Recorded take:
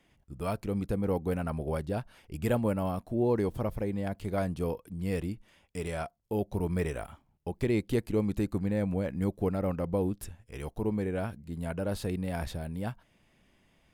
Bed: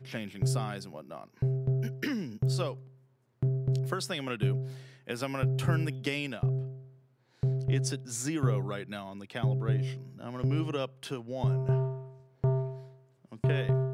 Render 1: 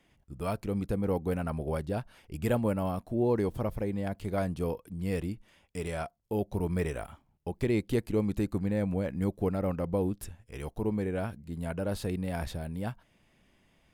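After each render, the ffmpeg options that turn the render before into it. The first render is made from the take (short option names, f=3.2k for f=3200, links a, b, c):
-af anull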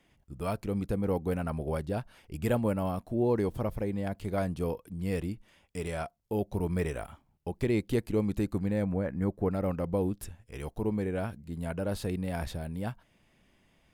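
-filter_complex "[0:a]asettb=1/sr,asplit=3[a][b][c];[a]atrim=end=8.844[d];[b]atrim=start=8.84:end=9.51,asetpts=PTS-STARTPTS,afade=t=in:d=0.004:c=qsin,afade=t=out:st=0.666:d=0.004:c=qsin,highshelf=f=2.3k:t=q:w=1.5:g=-8[e];[c]atrim=start=9.506[f];[d][e]acrossfade=d=0.004:c1=hsin:c2=qsin[g];[g][f]acrossfade=d=0.004:c1=qsin:c2=hsin"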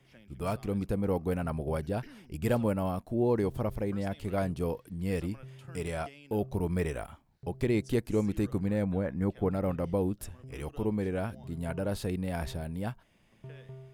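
-filter_complex "[1:a]volume=-19.5dB[a];[0:a][a]amix=inputs=2:normalize=0"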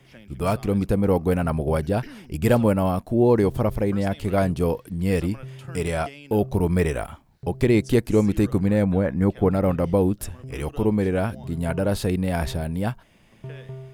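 -af "volume=9.5dB"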